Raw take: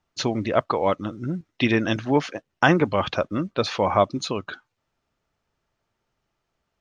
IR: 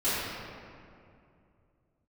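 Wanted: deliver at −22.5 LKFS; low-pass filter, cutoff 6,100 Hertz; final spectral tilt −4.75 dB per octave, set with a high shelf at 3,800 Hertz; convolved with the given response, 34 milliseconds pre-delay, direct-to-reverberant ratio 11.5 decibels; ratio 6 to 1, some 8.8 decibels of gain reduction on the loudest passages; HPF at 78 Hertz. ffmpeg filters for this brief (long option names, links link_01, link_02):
-filter_complex "[0:a]highpass=78,lowpass=6100,highshelf=frequency=3800:gain=-6,acompressor=threshold=-22dB:ratio=6,asplit=2[link_01][link_02];[1:a]atrim=start_sample=2205,adelay=34[link_03];[link_02][link_03]afir=irnorm=-1:irlink=0,volume=-23.5dB[link_04];[link_01][link_04]amix=inputs=2:normalize=0,volume=6.5dB"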